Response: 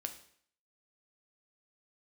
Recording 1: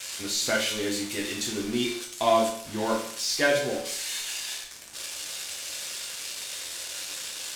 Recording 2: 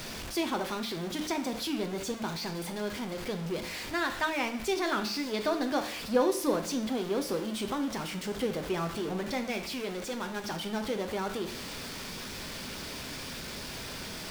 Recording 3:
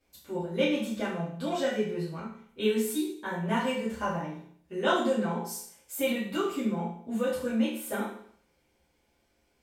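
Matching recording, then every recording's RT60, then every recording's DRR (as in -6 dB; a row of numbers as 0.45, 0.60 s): 2; 0.60, 0.60, 0.60 s; -2.5, 5.5, -11.0 dB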